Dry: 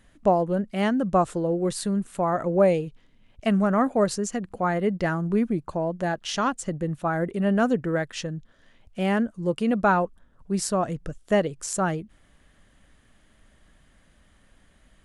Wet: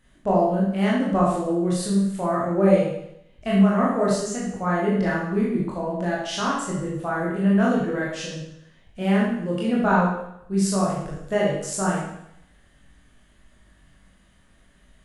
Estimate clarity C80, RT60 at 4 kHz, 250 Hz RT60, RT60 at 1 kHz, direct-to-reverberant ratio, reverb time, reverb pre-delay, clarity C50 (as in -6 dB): 4.5 dB, 0.75 s, 0.75 s, 0.75 s, -6.0 dB, 0.75 s, 21 ms, 0.5 dB